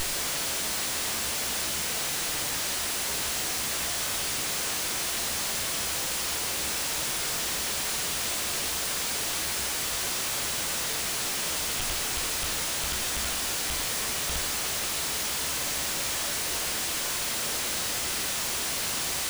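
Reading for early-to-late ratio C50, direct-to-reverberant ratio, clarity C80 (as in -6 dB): 11.0 dB, 6.0 dB, 14.5 dB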